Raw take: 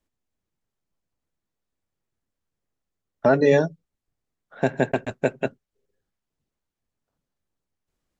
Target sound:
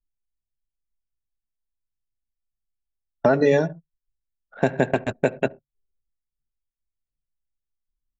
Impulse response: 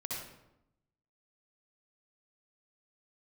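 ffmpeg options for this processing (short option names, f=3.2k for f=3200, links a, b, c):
-filter_complex "[0:a]asplit=2[a][b];[1:a]atrim=start_sample=2205,atrim=end_sample=6174[c];[b][c]afir=irnorm=-1:irlink=0,volume=-20dB[d];[a][d]amix=inputs=2:normalize=0,anlmdn=0.158,acompressor=threshold=-19dB:ratio=2.5,volume=3.5dB"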